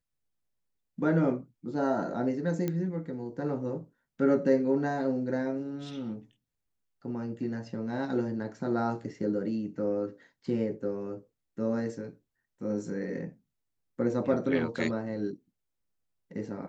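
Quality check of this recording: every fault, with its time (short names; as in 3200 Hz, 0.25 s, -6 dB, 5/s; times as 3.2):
2.68 pop -18 dBFS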